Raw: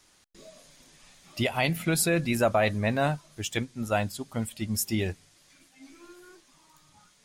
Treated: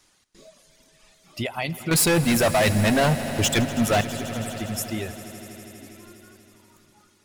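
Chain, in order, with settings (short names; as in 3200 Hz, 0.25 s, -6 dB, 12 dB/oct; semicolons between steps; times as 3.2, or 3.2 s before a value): reverb removal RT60 1.6 s; 1.91–4.01 sample leveller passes 5; in parallel at +0.5 dB: compressor, threshold -28 dBFS, peak gain reduction 12.5 dB; on the sum: swelling echo 81 ms, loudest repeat 5, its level -18 dB; gain -5.5 dB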